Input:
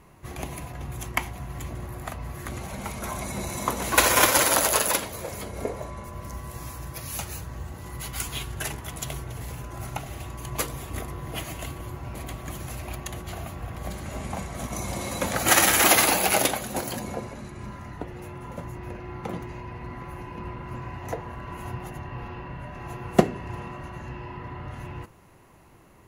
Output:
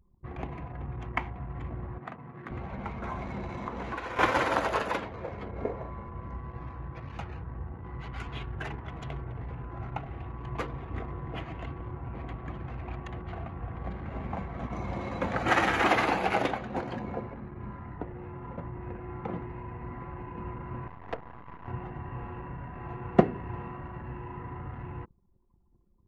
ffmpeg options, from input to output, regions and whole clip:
ffmpeg -i in.wav -filter_complex "[0:a]asettb=1/sr,asplit=3[link_01][link_02][link_03];[link_01]atrim=end=1.984[link_04];[link_02]atrim=start=1.98:end=2.51,asetpts=PTS-STARTPTS,afade=type=in:duration=0.004:curve=qsin,afade=type=out:start_time=0.526:duration=0.004:curve=qsin,highpass=frequency=140:width=0.5412,highpass=frequency=140:width=1.3066,equalizer=frequency=660:width_type=o:width=2.1:gain=-3[link_05];[link_03]atrim=start=2.506[link_06];[link_04][link_05]acrossfade=duration=0.004:curve1=hsin:curve2=qsin[link_07];[link_07][link_06]acrossfade=duration=0.004:curve1=qsin:curve2=hsin,asettb=1/sr,asplit=3[link_08][link_09][link_10];[link_08]atrim=end=3.194[link_11];[link_09]atrim=start=3.19:end=4.19,asetpts=PTS-STARTPTS,afade=type=in:duration=0.004:curve=qsin,afade=type=out:start_time=0.996:duration=0.004:curve=qsin,acrusher=bits=7:dc=4:mix=0:aa=0.000001,acompressor=threshold=-28dB:ratio=6:attack=3.2:release=140:knee=1:detection=peak[link_12];[link_10]atrim=start=4.186[link_13];[link_11][link_12]acrossfade=duration=0.004:curve1=hsin:curve2=qsin[link_14];[link_14][link_13]acrossfade=duration=0.004:curve1=qsin:curve2=hsin,asettb=1/sr,asplit=3[link_15][link_16][link_17];[link_15]atrim=end=20.874[link_18];[link_16]atrim=start=20.87:end=21.68,asetpts=PTS-STARTPTS,afade=type=in:duration=0.004:curve=qsin,afade=type=out:start_time=0.806:duration=0.004:curve=qsin,lowshelf=frequency=160:gain=-5.5,bandreject=frequency=60:width_type=h:width=6,bandreject=frequency=120:width_type=h:width=6,bandreject=frequency=180:width_type=h:width=6,bandreject=frequency=240:width_type=h:width=6,bandreject=frequency=300:width_type=h:width=6,bandreject=frequency=360:width_type=h:width=6,bandreject=frequency=420:width_type=h:width=6,acrusher=bits=5:dc=4:mix=0:aa=0.000001[link_19];[link_17]atrim=start=21.676[link_20];[link_18][link_19]acrossfade=duration=0.004:curve1=hsin:curve2=qsin[link_21];[link_21][link_20]acrossfade=duration=0.004:curve1=qsin:curve2=hsin,lowpass=2000,bandreject=frequency=600:width=12,anlmdn=0.0631,volume=-2dB" out.wav

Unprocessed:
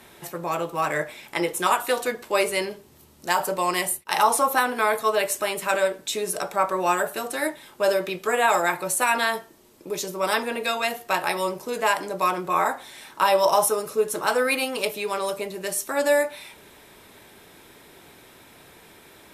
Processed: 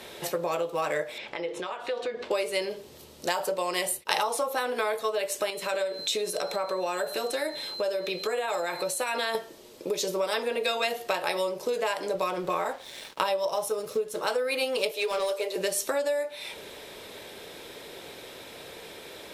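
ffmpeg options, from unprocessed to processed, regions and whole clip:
ffmpeg -i in.wav -filter_complex "[0:a]asettb=1/sr,asplit=3[link_01][link_02][link_03];[link_01]atrim=end=1.184[link_04];[link_02]atrim=start=1.18:end=2.31,asetpts=PTS-STARTPTS,afade=type=in:duration=0.004:curve=qsin,afade=type=out:start_time=1.126:duration=0.004:curve=qsin,lowpass=3600,bandreject=frequency=50:width_type=h:width=6,bandreject=frequency=100:width_type=h:width=6,bandreject=frequency=150:width_type=h:width=6,bandreject=frequency=200:width_type=h:width=6,bandreject=frequency=250:width_type=h:width=6,bandreject=frequency=300:width_type=h:width=6,bandreject=frequency=350:width_type=h:width=6,bandreject=frequency=400:width_type=h:width=6,acompressor=threshold=-38dB:ratio=5:attack=3.2:release=140:knee=1:detection=peak[link_05];[link_03]atrim=start=2.306[link_06];[link_04][link_05]acrossfade=duration=0.004:curve1=hsin:curve2=qsin[link_07];[link_07][link_06]acrossfade=duration=0.004:curve1=qsin:curve2=hsin,asettb=1/sr,asplit=3[link_08][link_09][link_10];[link_08]atrim=end=5.504[link_11];[link_09]atrim=start=5.5:end=9.35,asetpts=PTS-STARTPTS,afade=type=in:duration=0.004:curve=qsin,afade=type=out:start_time=3.846:duration=0.004:curve=qsin,aeval=exprs='val(0)+0.00631*sin(2*PI*4100*n/s)':channel_layout=same,acompressor=threshold=-37dB:ratio=2:attack=3.2:release=140:knee=1:detection=peak[link_12];[link_10]atrim=start=9.346[link_13];[link_11][link_12]acrossfade=duration=0.004:curve1=hsin:curve2=qsin[link_14];[link_14][link_13]acrossfade=duration=0.004:curve1=qsin:curve2=hsin,asettb=1/sr,asplit=3[link_15][link_16][link_17];[link_15]atrim=end=12.154[link_18];[link_16]atrim=start=12.15:end=14.18,asetpts=PTS-STARTPTS,afade=type=in:duration=0.004:curve=qsin,afade=type=out:start_time=2.026:duration=0.004:curve=qsin,lowshelf=frequency=150:gain=11,aeval=exprs='sgn(val(0))*max(abs(val(0))-0.00501,0)':channel_layout=same[link_19];[link_17]atrim=start=14.176[link_20];[link_18][link_19]acrossfade=duration=0.004:curve1=hsin:curve2=qsin[link_21];[link_21][link_20]acrossfade=duration=0.004:curve1=qsin:curve2=hsin,asettb=1/sr,asplit=3[link_22][link_23][link_24];[link_22]atrim=end=14.914[link_25];[link_23]atrim=start=14.91:end=15.56,asetpts=PTS-STARTPTS,afade=type=in:duration=0.004:curve=qsin,afade=type=out:start_time=0.646:duration=0.004:curve=qsin,highpass=frequency=380:width=0.5412,highpass=frequency=380:width=1.3066,volume=24dB,asoftclip=hard,volume=-24dB[link_26];[link_24]atrim=start=15.556[link_27];[link_25][link_26]acrossfade=duration=0.004:curve1=hsin:curve2=qsin[link_28];[link_28][link_27]acrossfade=duration=0.004:curve1=qsin:curve2=hsin,equalizer=frequency=510:width=1.7:gain=11.5,acompressor=threshold=-26dB:ratio=10,equalizer=frequency=3900:width=0.73:gain=9" out.wav

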